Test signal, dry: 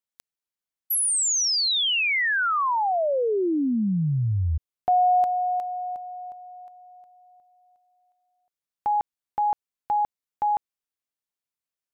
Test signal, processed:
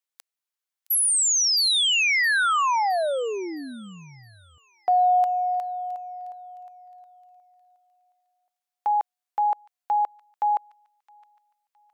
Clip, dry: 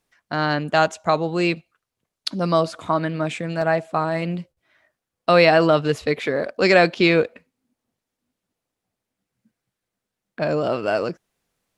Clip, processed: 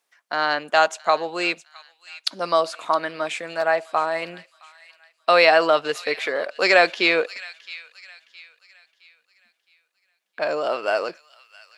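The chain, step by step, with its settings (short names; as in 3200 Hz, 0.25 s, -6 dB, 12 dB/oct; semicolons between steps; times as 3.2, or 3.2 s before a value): HPF 600 Hz 12 dB/oct; on a send: thin delay 0.665 s, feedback 38%, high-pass 2200 Hz, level -14.5 dB; on the sum: gain +2 dB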